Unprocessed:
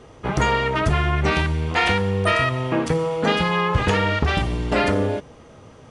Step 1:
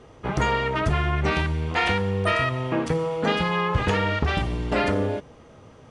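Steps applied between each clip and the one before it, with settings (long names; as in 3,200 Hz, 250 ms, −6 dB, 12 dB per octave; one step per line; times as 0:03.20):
high-shelf EQ 5,900 Hz −4.5 dB
level −3 dB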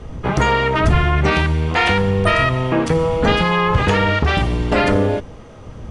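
wind on the microphone 110 Hz −35 dBFS
in parallel at −1 dB: brickwall limiter −15.5 dBFS, peak gain reduction 8 dB
on the sum: level +2.5 dB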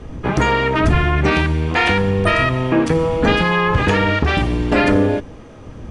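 hollow resonant body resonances 290/1,700/2,400 Hz, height 6 dB, ringing for 25 ms
level −1 dB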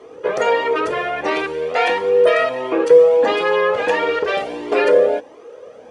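high-pass with resonance 480 Hz, resonance Q 4.9
flanger whose copies keep moving one way rising 1.5 Hz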